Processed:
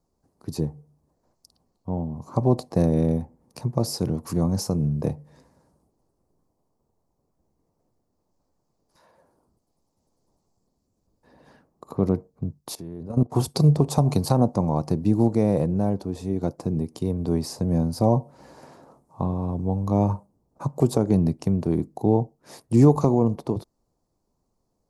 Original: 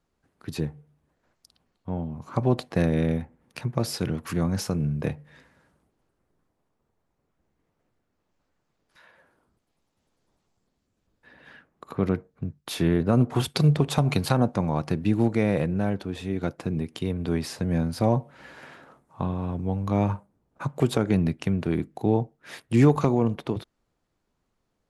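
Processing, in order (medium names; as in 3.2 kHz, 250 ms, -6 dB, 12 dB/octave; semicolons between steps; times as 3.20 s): high-order bell 2.2 kHz -15 dB; 12.75–13.32 s: level held to a coarse grid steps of 19 dB; trim +2.5 dB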